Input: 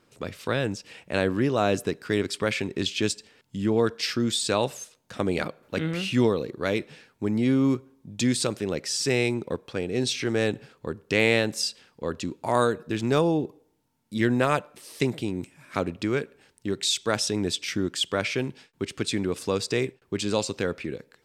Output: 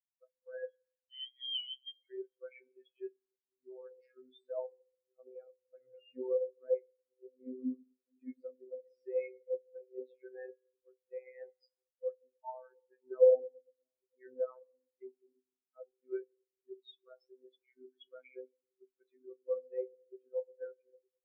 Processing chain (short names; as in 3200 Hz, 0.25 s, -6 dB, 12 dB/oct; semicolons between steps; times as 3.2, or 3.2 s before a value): three-band isolator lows -23 dB, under 470 Hz, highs -13 dB, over 2300 Hz; limiter -22 dBFS, peak gain reduction 10.5 dB; 0.68–2.07 inverted band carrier 3600 Hz; delay with a stepping band-pass 0.456 s, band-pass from 210 Hz, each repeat 0.7 oct, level -9 dB; reverb RT60 2.2 s, pre-delay 3 ms, DRR 4.5 dB; robotiser 128 Hz; spectral expander 4:1; gain +1.5 dB